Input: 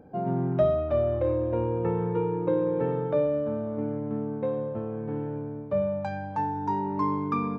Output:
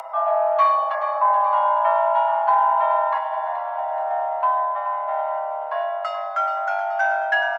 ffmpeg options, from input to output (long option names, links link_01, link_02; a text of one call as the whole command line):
ffmpeg -i in.wav -filter_complex "[0:a]asoftclip=type=tanh:threshold=-15.5dB,asettb=1/sr,asplit=3[link_01][link_02][link_03];[link_01]atrim=end=0.944[link_04];[link_02]atrim=start=0.94:end=1.36,asetpts=PTS-STARTPTS,afade=type=in:duration=0.004:curve=qsin,afade=type=out:start_time=0.416:duration=0.004:curve=qsin,asuperstop=centerf=2900:order=4:qfactor=0.98[link_05];[link_03]atrim=start=1.356[link_06];[link_04][link_05]acrossfade=duration=0.004:curve1=hsin:curve2=qsin[link_07];[link_07][link_06]acrossfade=duration=0.004:curve1=qsin:curve2=hsin,asettb=1/sr,asplit=3[link_08][link_09][link_10];[link_08]atrim=end=3.174[link_11];[link_09]atrim=start=3.17:end=3.96,asetpts=PTS-STARTPTS,afade=type=in:duration=0.004:curve=qsin,afade=type=out:start_time=0.786:duration=0.004:curve=qsin,acompressor=threshold=-27dB:ratio=6[link_12];[link_10]atrim=start=3.956[link_13];[link_11][link_12]acrossfade=duration=0.004:curve1=hsin:curve2=qsin[link_14];[link_14][link_13]acrossfade=duration=0.004:curve1=qsin:curve2=hsin,aecho=1:1:6:0.8,asplit=2[link_15][link_16];[link_16]aecho=0:1:427|854|1281|1708|2135|2562:0.299|0.155|0.0807|0.042|0.0218|0.0114[link_17];[link_15][link_17]amix=inputs=2:normalize=0,afreqshift=490,acompressor=mode=upward:threshold=-31dB:ratio=2.5,volume=5dB" out.wav